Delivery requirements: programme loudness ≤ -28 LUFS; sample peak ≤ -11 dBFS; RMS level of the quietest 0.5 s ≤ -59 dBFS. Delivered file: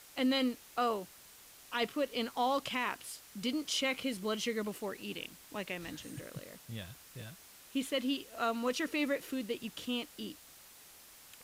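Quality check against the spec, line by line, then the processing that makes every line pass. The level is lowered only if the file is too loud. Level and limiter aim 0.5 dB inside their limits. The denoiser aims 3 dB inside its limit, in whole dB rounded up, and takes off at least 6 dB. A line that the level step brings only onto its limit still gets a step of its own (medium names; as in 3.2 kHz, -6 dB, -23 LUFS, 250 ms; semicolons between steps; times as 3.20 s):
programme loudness -36.0 LUFS: pass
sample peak -22.0 dBFS: pass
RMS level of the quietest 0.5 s -57 dBFS: fail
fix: noise reduction 6 dB, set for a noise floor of -57 dBFS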